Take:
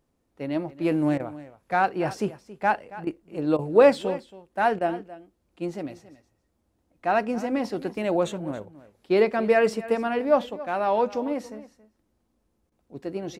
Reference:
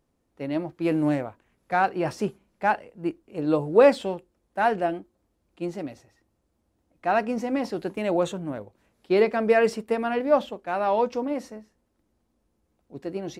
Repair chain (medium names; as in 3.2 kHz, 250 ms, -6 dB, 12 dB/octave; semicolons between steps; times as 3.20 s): interpolate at 1.18/3.05/3.57/4.79/12.70 s, 17 ms; inverse comb 276 ms -17 dB